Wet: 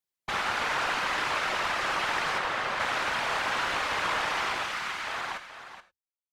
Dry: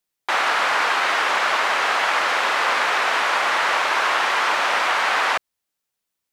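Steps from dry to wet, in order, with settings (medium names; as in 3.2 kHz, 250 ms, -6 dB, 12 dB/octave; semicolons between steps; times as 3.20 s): fade out at the end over 1.99 s; 2.38–2.80 s: treble shelf 4 kHz -9 dB; 4.63–5.07 s: high-pass 1.3 kHz; valve stage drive 14 dB, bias 0.75; whisper effect; delay 427 ms -11 dB; gated-style reverb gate 120 ms flat, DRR 11.5 dB; trim -5.5 dB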